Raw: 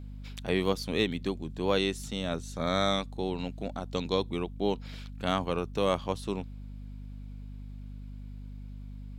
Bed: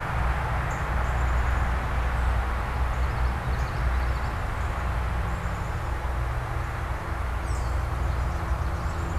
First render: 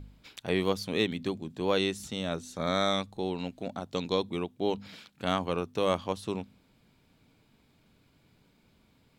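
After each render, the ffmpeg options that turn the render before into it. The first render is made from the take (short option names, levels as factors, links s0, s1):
-af "bandreject=f=50:t=h:w=4,bandreject=f=100:t=h:w=4,bandreject=f=150:t=h:w=4,bandreject=f=200:t=h:w=4,bandreject=f=250:t=h:w=4"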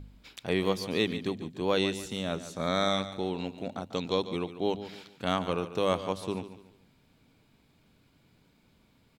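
-af "aecho=1:1:144|288|432:0.224|0.0784|0.0274"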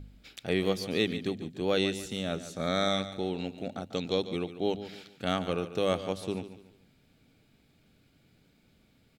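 -af "equalizer=f=1000:w=6.2:g=-14"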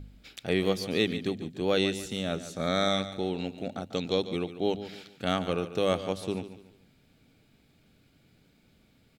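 -af "volume=1.19"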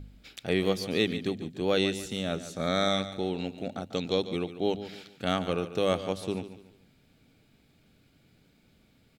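-af anull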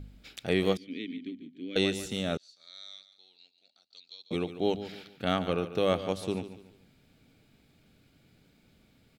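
-filter_complex "[0:a]asettb=1/sr,asplit=3[s0][s1][s2];[s0]atrim=end=0.774[s3];[s1]atrim=start=0.77:end=1.76,asetpts=PTS-STARTPTS,afade=t=in:d=0.004:c=qsin,afade=t=out:st=0.986:d=0.004:c=qsin,asplit=3[s4][s5][s6];[s4]bandpass=f=270:t=q:w=8,volume=1[s7];[s5]bandpass=f=2290:t=q:w=8,volume=0.501[s8];[s6]bandpass=f=3010:t=q:w=8,volume=0.355[s9];[s7][s8][s9]amix=inputs=3:normalize=0[s10];[s2]atrim=start=1.756[s11];[s3][s10]acrossfade=d=0.004:c1=hsin:c2=qsin[s12];[s12][s11]acrossfade=d=0.004:c1=qsin:c2=hsin,asettb=1/sr,asplit=3[s13][s14][s15];[s13]atrim=end=2.374[s16];[s14]atrim=start=2.37:end=4.31,asetpts=PTS-STARTPTS,afade=t=in:d=0.004:c=qsin,afade=t=out:st=1.936:d=0.004:c=qsin,bandpass=f=4500:t=q:w=11[s17];[s15]atrim=start=4.306[s18];[s16][s17]acrossfade=d=0.004:c1=hsin:c2=qsin[s19];[s19][s18]acrossfade=d=0.004:c1=qsin:c2=hsin,asettb=1/sr,asplit=3[s20][s21][s22];[s20]atrim=end=4.924[s23];[s21]atrim=start=4.92:end=6.09,asetpts=PTS-STARTPTS,afade=t=in:d=0.004:c=qsin,afade=t=out:st=1.166:d=0.004:c=qsin,equalizer=f=7400:w=1.4:g=-8[s24];[s22]atrim=start=6.086[s25];[s23][s24]acrossfade=d=0.004:c1=hsin:c2=qsin[s26];[s26][s25]acrossfade=d=0.004:c1=qsin:c2=hsin"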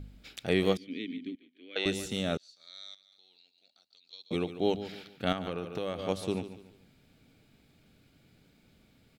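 -filter_complex "[0:a]asettb=1/sr,asplit=3[s0][s1][s2];[s0]atrim=end=1.354[s3];[s1]atrim=start=1.35:end=1.86,asetpts=PTS-STARTPTS,afade=t=in:d=0.004:c=qsin,afade=t=out:st=0.506:d=0.004:c=qsin,highpass=650,lowpass=3400[s4];[s2]atrim=start=1.856[s5];[s3][s4]acrossfade=d=0.004:c1=hsin:c2=qsin[s6];[s6][s5]acrossfade=d=0.004:c1=qsin:c2=hsin,asettb=1/sr,asplit=3[s7][s8][s9];[s7]atrim=end=2.944[s10];[s8]atrim=start=2.94:end=4.13,asetpts=PTS-STARTPTS,afade=t=in:d=0.004:c=qsin,afade=t=out:st=1.186:d=0.004:c=qsin,acompressor=threshold=0.00158:ratio=10:attack=3.2:release=140:knee=1:detection=peak[s11];[s9]atrim=start=4.126[s12];[s10][s11]acrossfade=d=0.004:c1=hsin:c2=qsin[s13];[s13][s12]acrossfade=d=0.004:c1=qsin:c2=hsin,asettb=1/sr,asplit=3[s14][s15][s16];[s14]atrim=end=5.324[s17];[s15]atrim=start=5.32:end=5.99,asetpts=PTS-STARTPTS,afade=t=in:d=0.004:c=qsin,afade=t=out:st=0.666:d=0.004:c=qsin,acompressor=threshold=0.0316:ratio=6:attack=3.2:release=140:knee=1:detection=peak[s18];[s16]atrim=start=5.986[s19];[s17][s18]acrossfade=d=0.004:c1=hsin:c2=qsin[s20];[s20][s19]acrossfade=d=0.004:c1=qsin:c2=hsin"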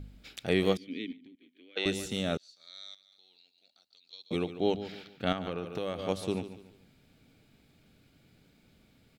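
-filter_complex "[0:a]asettb=1/sr,asplit=3[s0][s1][s2];[s0]atrim=end=1.124[s3];[s1]atrim=start=1.12:end=1.77,asetpts=PTS-STARTPTS,afade=t=in:d=0.004:c=qsin,afade=t=out:st=0.646:d=0.004:c=qsin,acompressor=threshold=0.00251:ratio=5:attack=3.2:release=140:knee=1:detection=peak[s4];[s2]atrim=start=1.766[s5];[s3][s4]acrossfade=d=0.004:c1=hsin:c2=qsin[s6];[s6][s5]acrossfade=d=0.004:c1=qsin:c2=hsin,asettb=1/sr,asplit=3[s7][s8][s9];[s7]atrim=end=4.474[s10];[s8]atrim=start=4.47:end=5.66,asetpts=PTS-STARTPTS,afade=t=in:d=0.004:c=qsin,afade=t=out:st=1.186:d=0.004:c=qsin,equalizer=f=11000:w=0.94:g=-7[s11];[s9]atrim=start=5.656[s12];[s10][s11]acrossfade=d=0.004:c1=hsin:c2=qsin[s13];[s13][s12]acrossfade=d=0.004:c1=qsin:c2=hsin"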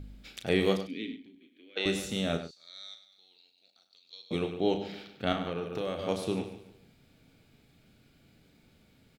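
-filter_complex "[0:a]asplit=2[s0][s1];[s1]adelay=36,volume=0.398[s2];[s0][s2]amix=inputs=2:normalize=0,asplit=2[s3][s4];[s4]adelay=99.13,volume=0.282,highshelf=f=4000:g=-2.23[s5];[s3][s5]amix=inputs=2:normalize=0"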